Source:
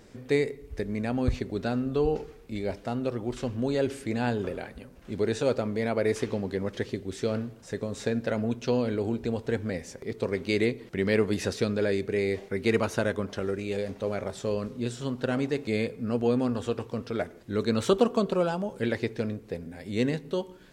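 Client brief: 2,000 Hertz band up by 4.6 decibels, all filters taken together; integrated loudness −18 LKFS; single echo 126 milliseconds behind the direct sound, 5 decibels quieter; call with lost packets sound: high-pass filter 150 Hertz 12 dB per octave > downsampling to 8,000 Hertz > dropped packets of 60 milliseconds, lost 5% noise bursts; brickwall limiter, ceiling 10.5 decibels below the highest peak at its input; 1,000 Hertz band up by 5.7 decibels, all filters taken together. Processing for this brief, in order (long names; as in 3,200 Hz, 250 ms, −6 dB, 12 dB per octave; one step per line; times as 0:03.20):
parametric band 1,000 Hz +7 dB
parametric band 2,000 Hz +3.5 dB
brickwall limiter −17 dBFS
high-pass filter 150 Hz 12 dB per octave
single-tap delay 126 ms −5 dB
downsampling to 8,000 Hz
dropped packets of 60 ms, lost 5% noise bursts
level +12 dB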